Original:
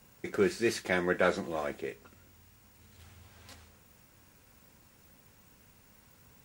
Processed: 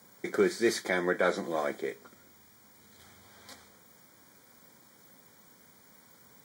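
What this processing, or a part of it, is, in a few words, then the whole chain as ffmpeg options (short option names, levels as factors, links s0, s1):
PA system with an anti-feedback notch: -af "highpass=190,asuperstop=centerf=2700:order=8:qfactor=4.2,alimiter=limit=0.126:level=0:latency=1:release=267,volume=1.5"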